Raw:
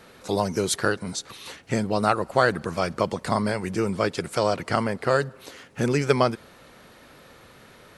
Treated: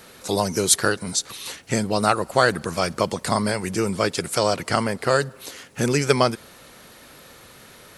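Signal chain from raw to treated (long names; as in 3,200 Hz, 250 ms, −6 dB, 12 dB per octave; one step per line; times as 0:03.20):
high-shelf EQ 4,600 Hz +11.5 dB
level +1.5 dB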